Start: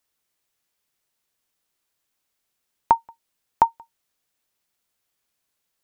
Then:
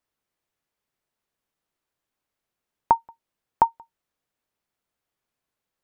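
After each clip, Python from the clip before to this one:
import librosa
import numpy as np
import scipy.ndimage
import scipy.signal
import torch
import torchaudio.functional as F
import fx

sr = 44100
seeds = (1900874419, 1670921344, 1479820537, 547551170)

y = fx.high_shelf(x, sr, hz=2500.0, db=-11.5)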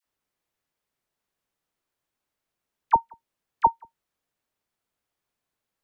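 y = fx.dispersion(x, sr, late='lows', ms=54.0, hz=940.0)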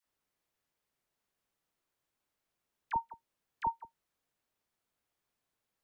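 y = fx.over_compress(x, sr, threshold_db=-22.0, ratio=-1.0)
y = y * 10.0 ** (-7.5 / 20.0)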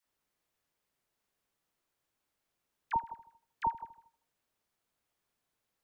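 y = fx.echo_feedback(x, sr, ms=78, feedback_pct=52, wet_db=-17.0)
y = y * 10.0 ** (1.5 / 20.0)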